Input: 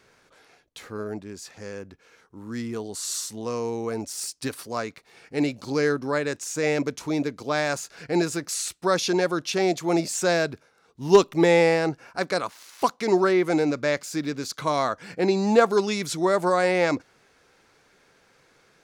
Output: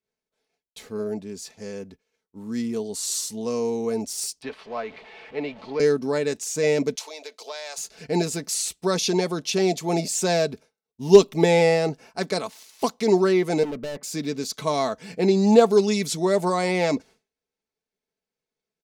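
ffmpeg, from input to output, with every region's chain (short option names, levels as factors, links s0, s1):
-filter_complex "[0:a]asettb=1/sr,asplit=3[s0][s1][s2];[s0]atrim=end=4.424[s3];[s1]atrim=start=4.42:end=5.8,asetpts=PTS-STARTPTS,afade=t=in:d=0.004:c=qsin,afade=t=out:st=1.376:d=0.004:c=qsin,aeval=exprs='val(0)+0.5*0.0168*sgn(val(0))':c=same,lowpass=4400,acrossover=split=500 3300:gain=0.224 1 0.1[s4][s5][s6];[s4][s5][s6]amix=inputs=3:normalize=0[s7];[s2]atrim=start=5.796[s8];[s3][s7]acrossfade=d=0.004:c1=hsin:c2=qsin[s9];[s9][s8]acrossfade=d=0.004:c1=qsin:c2=hsin,asettb=1/sr,asplit=3[s10][s11][s12];[s10]atrim=end=6.954[s13];[s11]atrim=start=6.95:end=7.78,asetpts=PTS-STARTPTS,afade=t=in:d=0.004:c=qsin,afade=t=out:st=0.826:d=0.004:c=qsin,equalizer=f=3800:t=o:w=1.5:g=6,acompressor=threshold=0.0447:ratio=12:attack=3.2:release=140:knee=1:detection=peak,highpass=f=550:w=0.5412,highpass=f=550:w=1.3066[s14];[s12]atrim=start=7.776[s15];[s13][s14]acrossfade=d=0.004:c1=hsin:c2=qsin[s16];[s16][s15]acrossfade=d=0.004:c1=qsin:c2=hsin,asettb=1/sr,asplit=3[s17][s18][s19];[s17]atrim=end=13.634[s20];[s18]atrim=start=13.63:end=14.03,asetpts=PTS-STARTPTS,afade=t=in:d=0.004:c=qsin,afade=t=out:st=0.396:d=0.004:c=qsin,lowpass=f=1700:w=0.5412,lowpass=f=1700:w=1.3066,volume=31.6,asoftclip=hard,volume=0.0316[s21];[s19]atrim=start=14.026[s22];[s20][s21]acrossfade=d=0.004:c1=hsin:c2=qsin[s23];[s23][s22]acrossfade=d=0.004:c1=qsin:c2=hsin,agate=range=0.0224:threshold=0.00794:ratio=3:detection=peak,equalizer=f=1400:w=1.3:g=-10,aecho=1:1:4.6:0.51,volume=1.26"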